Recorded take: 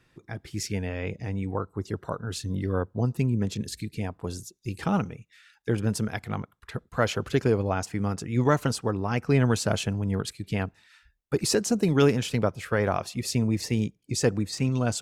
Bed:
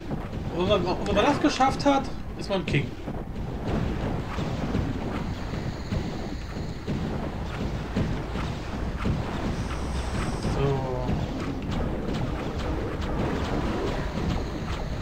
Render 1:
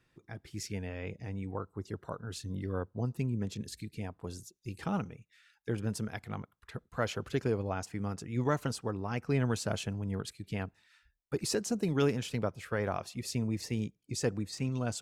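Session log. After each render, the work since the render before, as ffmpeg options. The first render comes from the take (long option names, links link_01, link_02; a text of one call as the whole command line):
ffmpeg -i in.wav -af "volume=-8dB" out.wav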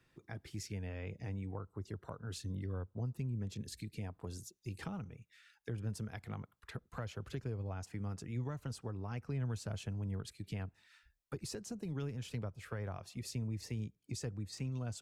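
ffmpeg -i in.wav -filter_complex "[0:a]acrossover=split=120[link_01][link_02];[link_02]acompressor=threshold=-43dB:ratio=6[link_03];[link_01][link_03]amix=inputs=2:normalize=0" out.wav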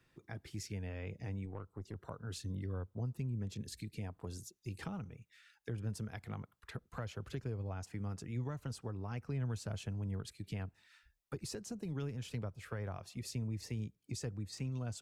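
ffmpeg -i in.wav -filter_complex "[0:a]asettb=1/sr,asplit=3[link_01][link_02][link_03];[link_01]atrim=end=1.454[link_04];[link_02]atrim=start=1.45:end=1.96,asetpts=PTS-STARTPTS,afade=type=in:duration=0.004:curve=qsin,afade=type=out:start_time=0.506:duration=0.004:curve=qsin,aeval=exprs='(tanh(63.1*val(0)+0.5)-tanh(0.5))/63.1':channel_layout=same[link_05];[link_03]atrim=start=1.956[link_06];[link_04][link_05]acrossfade=duration=0.004:curve1=hsin:curve2=qsin[link_07];[link_07][link_06]acrossfade=duration=0.004:curve1=qsin:curve2=hsin" out.wav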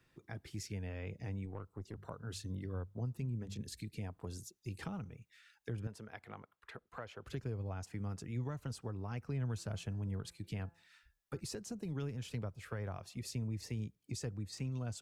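ffmpeg -i in.wav -filter_complex "[0:a]asettb=1/sr,asplit=3[link_01][link_02][link_03];[link_01]atrim=end=1.904[link_04];[link_02]atrim=start=1.9:end=3.59,asetpts=PTS-STARTPTS,afade=type=in:duration=0.004:curve=qsin,afade=type=out:start_time=1.686:duration=0.004:curve=qsin,bandreject=frequency=50:width_type=h:width=6,bandreject=frequency=100:width_type=h:width=6,bandreject=frequency=150:width_type=h:width=6,bandreject=frequency=200:width_type=h:width=6[link_05];[link_03]atrim=start=3.586[link_06];[link_04][link_05]acrossfade=duration=0.004:curve1=hsin:curve2=qsin[link_07];[link_07][link_06]acrossfade=duration=0.004:curve1=qsin:curve2=hsin,asettb=1/sr,asplit=3[link_08][link_09][link_10];[link_08]atrim=end=5.874[link_11];[link_09]atrim=start=5.87:end=7.26,asetpts=PTS-STARTPTS,afade=type=in:duration=0.004:curve=qsin,afade=type=out:start_time=1.386:duration=0.004:curve=qsin,bass=frequency=250:gain=-13,treble=frequency=4000:gain=-9[link_12];[link_10]atrim=start=7.256[link_13];[link_11][link_12]acrossfade=duration=0.004:curve1=hsin:curve2=qsin[link_14];[link_14][link_13]acrossfade=duration=0.004:curve1=qsin:curve2=hsin,asplit=3[link_15][link_16][link_17];[link_15]afade=type=out:start_time=9.57:duration=0.02[link_18];[link_16]bandreject=frequency=169.9:width_type=h:width=4,bandreject=frequency=339.8:width_type=h:width=4,bandreject=frequency=509.7:width_type=h:width=4,bandreject=frequency=679.6:width_type=h:width=4,bandreject=frequency=849.5:width_type=h:width=4,bandreject=frequency=1019.4:width_type=h:width=4,bandreject=frequency=1189.3:width_type=h:width=4,bandreject=frequency=1359.2:width_type=h:width=4,bandreject=frequency=1529.1:width_type=h:width=4,bandreject=frequency=1699:width_type=h:width=4,afade=type=in:start_time=9.57:duration=0.02,afade=type=out:start_time=11.39:duration=0.02[link_19];[link_17]afade=type=in:start_time=11.39:duration=0.02[link_20];[link_18][link_19][link_20]amix=inputs=3:normalize=0" out.wav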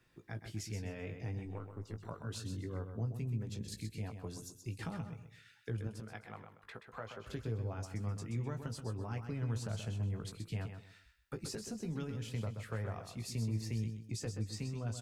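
ffmpeg -i in.wav -filter_complex "[0:a]asplit=2[link_01][link_02];[link_02]adelay=18,volume=-7dB[link_03];[link_01][link_03]amix=inputs=2:normalize=0,asplit=2[link_04][link_05];[link_05]aecho=0:1:128|256|384:0.398|0.107|0.029[link_06];[link_04][link_06]amix=inputs=2:normalize=0" out.wav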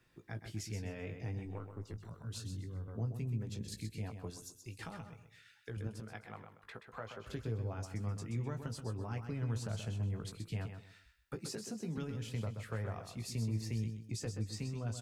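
ffmpeg -i in.wav -filter_complex "[0:a]asettb=1/sr,asplit=3[link_01][link_02][link_03];[link_01]atrim=end=1.934[link_04];[link_02]atrim=start=1.93:end=2.88,asetpts=PTS-STARTPTS,afade=type=in:duration=0.004:curve=qsin,afade=type=out:start_time=0.946:duration=0.004:curve=qsin,acrossover=split=200|3000[link_05][link_06][link_07];[link_06]acompressor=threshold=-54dB:ratio=6:attack=3.2:release=140:knee=2.83:detection=peak[link_08];[link_05][link_08][link_07]amix=inputs=3:normalize=0[link_09];[link_03]atrim=start=2.876[link_10];[link_04][link_09]acrossfade=duration=0.004:curve1=hsin:curve2=qsin[link_11];[link_11][link_10]acrossfade=duration=0.004:curve1=qsin:curve2=hsin,asettb=1/sr,asplit=3[link_12][link_13][link_14];[link_12]atrim=end=4.304[link_15];[link_13]atrim=start=4.3:end=5.77,asetpts=PTS-STARTPTS,afade=type=in:duration=0.004:curve=qsin,afade=type=out:start_time=1.466:duration=0.004:curve=qsin,equalizer=frequency=160:width_type=o:width=2.8:gain=-7.5[link_16];[link_14]atrim=start=5.766[link_17];[link_15][link_16]acrossfade=duration=0.004:curve1=hsin:curve2=qsin[link_18];[link_18][link_17]acrossfade=duration=0.004:curve1=qsin:curve2=hsin,asettb=1/sr,asplit=3[link_19][link_20][link_21];[link_19]atrim=end=11.354[link_22];[link_20]atrim=start=11.35:end=11.98,asetpts=PTS-STARTPTS,afade=type=in:duration=0.004:curve=qsin,afade=type=out:start_time=0.626:duration=0.004:curve=qsin,highpass=frequency=120:width=0.5412,highpass=frequency=120:width=1.3066[link_23];[link_21]atrim=start=11.976[link_24];[link_22][link_23]acrossfade=duration=0.004:curve1=hsin:curve2=qsin[link_25];[link_25][link_24]acrossfade=duration=0.004:curve1=qsin:curve2=hsin" out.wav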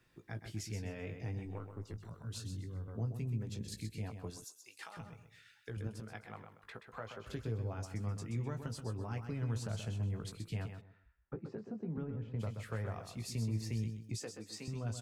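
ffmpeg -i in.wav -filter_complex "[0:a]asettb=1/sr,asplit=3[link_01][link_02][link_03];[link_01]atrim=end=4.444[link_04];[link_02]atrim=start=4.44:end=4.97,asetpts=PTS-STARTPTS,afade=type=in:duration=0.004:curve=qsin,afade=type=out:start_time=0.526:duration=0.004:curve=qsin,highpass=750[link_05];[link_03]atrim=start=4.966[link_06];[link_04][link_05]acrossfade=duration=0.004:curve1=hsin:curve2=qsin[link_07];[link_07][link_06]acrossfade=duration=0.004:curve1=qsin:curve2=hsin,asplit=3[link_08][link_09][link_10];[link_08]afade=type=out:start_time=10.8:duration=0.02[link_11];[link_09]lowpass=1100,afade=type=in:start_time=10.8:duration=0.02,afade=type=out:start_time=12.39:duration=0.02[link_12];[link_10]afade=type=in:start_time=12.39:duration=0.02[link_13];[link_11][link_12][link_13]amix=inputs=3:normalize=0,asettb=1/sr,asplit=3[link_14][link_15][link_16];[link_14]atrim=end=14.184[link_17];[link_15]atrim=start=14.18:end=14.68,asetpts=PTS-STARTPTS,afade=type=in:duration=0.004:curve=qsin,afade=type=out:start_time=0.496:duration=0.004:curve=qsin,highpass=310[link_18];[link_16]atrim=start=14.676[link_19];[link_17][link_18]acrossfade=duration=0.004:curve1=hsin:curve2=qsin[link_20];[link_20][link_19]acrossfade=duration=0.004:curve1=qsin:curve2=hsin" out.wav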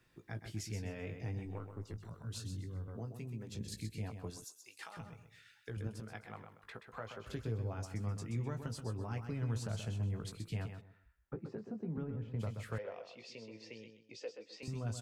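ffmpeg -i in.wav -filter_complex "[0:a]asettb=1/sr,asplit=3[link_01][link_02][link_03];[link_01]atrim=end=2.974[link_04];[link_02]atrim=start=2.97:end=3.55,asetpts=PTS-STARTPTS,afade=type=in:duration=0.004:curve=qsin,afade=type=out:start_time=0.576:duration=0.004:curve=qsin,highpass=frequency=270:poles=1[link_05];[link_03]atrim=start=3.546[link_06];[link_04][link_05]acrossfade=duration=0.004:curve1=hsin:curve2=qsin[link_07];[link_07][link_06]acrossfade=duration=0.004:curve1=qsin:curve2=hsin,asettb=1/sr,asplit=3[link_08][link_09][link_10];[link_08]atrim=end=12.784[link_11];[link_09]atrim=start=12.78:end=14.63,asetpts=PTS-STARTPTS,afade=type=in:duration=0.004:curve=qsin,afade=type=out:start_time=1.846:duration=0.004:curve=qsin,highpass=500,equalizer=frequency=510:width_type=q:width=4:gain=10,equalizer=frequency=780:width_type=q:width=4:gain=-5,equalizer=frequency=1200:width_type=q:width=4:gain=-9,equalizer=frequency=1700:width_type=q:width=4:gain=-5,equalizer=frequency=2800:width_type=q:width=4:gain=4,equalizer=frequency=4000:width_type=q:width=4:gain=-4,lowpass=frequency=4600:width=0.5412,lowpass=frequency=4600:width=1.3066[link_12];[link_10]atrim=start=14.626[link_13];[link_11][link_12]acrossfade=duration=0.004:curve1=hsin:curve2=qsin[link_14];[link_14][link_13]acrossfade=duration=0.004:curve1=qsin:curve2=hsin" out.wav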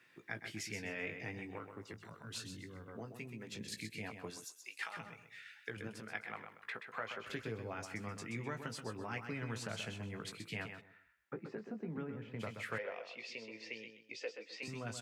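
ffmpeg -i in.wav -af "highpass=190,equalizer=frequency=2100:width_type=o:width=1.3:gain=11" out.wav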